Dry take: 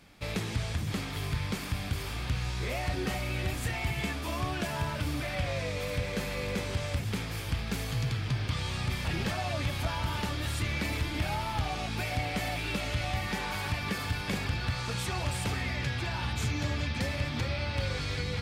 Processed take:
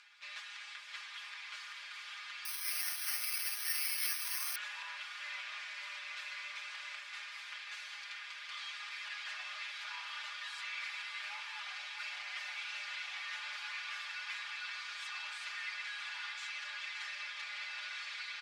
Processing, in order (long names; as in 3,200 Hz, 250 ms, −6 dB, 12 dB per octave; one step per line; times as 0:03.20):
lower of the sound and its delayed copy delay 8.3 ms
high-pass filter 1,300 Hz 24 dB per octave
high-shelf EQ 8,300 Hz −10 dB
comb filter 4.9 ms, depth 90%
upward compression, threshold −48 dBFS
high-frequency loss of the air 74 metres
feedback delay with all-pass diffusion 596 ms, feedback 76%, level −8 dB
0:02.45–0:04.56: bad sample-rate conversion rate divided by 6×, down filtered, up zero stuff
level −5.5 dB